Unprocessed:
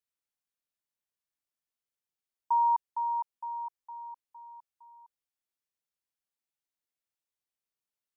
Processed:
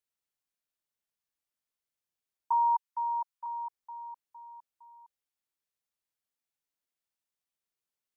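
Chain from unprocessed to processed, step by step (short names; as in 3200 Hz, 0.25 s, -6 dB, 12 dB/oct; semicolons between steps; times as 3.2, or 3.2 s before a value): 2.52–3.46 steep high-pass 890 Hz 96 dB/oct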